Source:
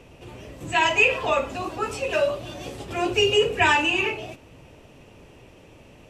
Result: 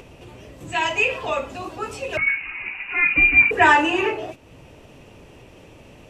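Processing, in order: upward compressor, threshold -36 dBFS; 2.27–4.31 s: time-frequency box 260–2100 Hz +8 dB; 2.17–3.51 s: frequency inversion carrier 2.8 kHz; trim -2 dB

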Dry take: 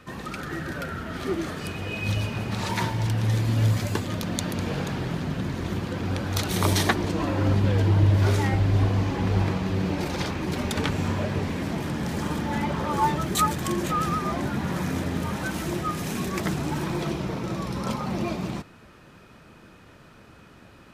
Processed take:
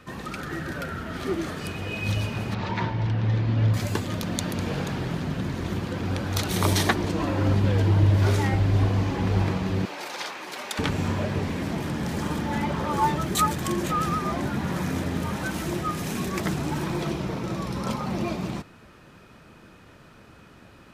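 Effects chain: 2.54–3.74 s: distance through air 220 m; 9.85–10.79 s: high-pass 700 Hz 12 dB/octave

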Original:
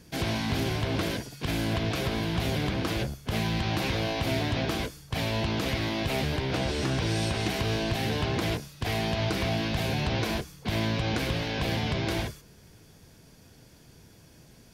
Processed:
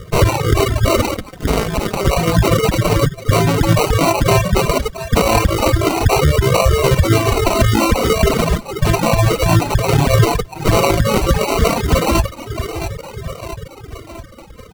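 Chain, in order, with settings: comb filter that takes the minimum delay 1.9 ms; 9.05–9.52 s: low-pass 2.1 kHz 24 dB/octave; feedback delay 667 ms, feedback 54%, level -9.5 dB; spectral gate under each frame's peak -15 dB strong; reverb removal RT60 0.7 s; sample-and-hold 26×; flange 0.15 Hz, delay 1.6 ms, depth 5.8 ms, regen -32%; reverb removal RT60 1.4 s; 1.14–2.05 s: AM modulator 210 Hz, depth 75%; loudness maximiser +26.5 dB; trim -1 dB

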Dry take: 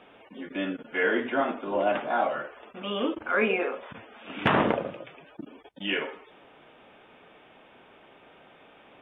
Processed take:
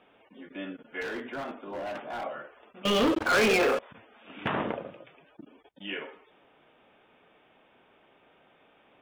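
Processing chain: 1.01–2.24 s: overload inside the chain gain 24.5 dB; 2.85–3.79 s: waveshaping leveller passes 5; trim -7.5 dB

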